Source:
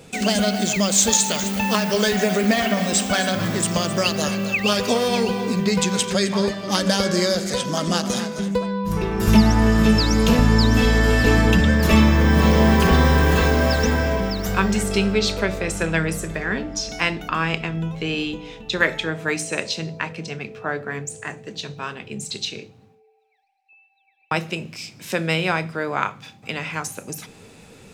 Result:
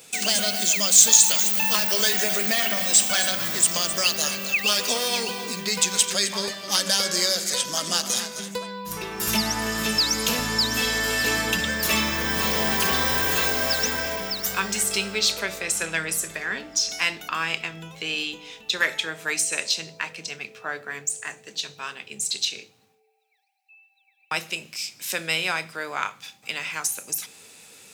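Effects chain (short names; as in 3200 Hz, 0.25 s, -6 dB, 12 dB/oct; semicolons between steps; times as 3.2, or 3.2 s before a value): tilt +4 dB/oct; in parallel at -8 dB: overloaded stage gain 13.5 dB; on the sum: gain -8 dB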